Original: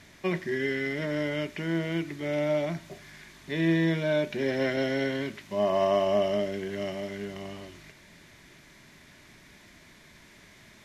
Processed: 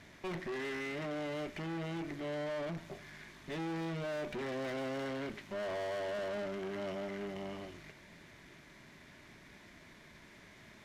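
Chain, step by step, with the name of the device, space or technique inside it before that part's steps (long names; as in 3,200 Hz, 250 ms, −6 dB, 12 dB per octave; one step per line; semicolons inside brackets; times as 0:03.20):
tube preamp driven hard (tube saturation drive 38 dB, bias 0.6; low-shelf EQ 170 Hz −3 dB; high-shelf EQ 3,500 Hz −8.5 dB)
level +2 dB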